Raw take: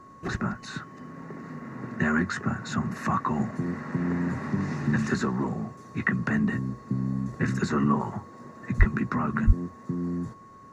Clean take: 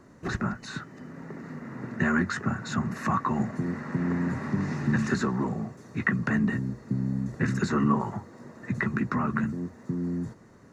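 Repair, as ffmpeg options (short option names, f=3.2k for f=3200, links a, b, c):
-filter_complex "[0:a]bandreject=f=1.1k:w=30,asplit=3[a][b][c];[a]afade=t=out:st=8.78:d=0.02[d];[b]highpass=f=140:w=0.5412,highpass=f=140:w=1.3066,afade=t=in:st=8.78:d=0.02,afade=t=out:st=8.9:d=0.02[e];[c]afade=t=in:st=8.9:d=0.02[f];[d][e][f]amix=inputs=3:normalize=0,asplit=3[g][h][i];[g]afade=t=out:st=9.46:d=0.02[j];[h]highpass=f=140:w=0.5412,highpass=f=140:w=1.3066,afade=t=in:st=9.46:d=0.02,afade=t=out:st=9.58:d=0.02[k];[i]afade=t=in:st=9.58:d=0.02[l];[j][k][l]amix=inputs=3:normalize=0"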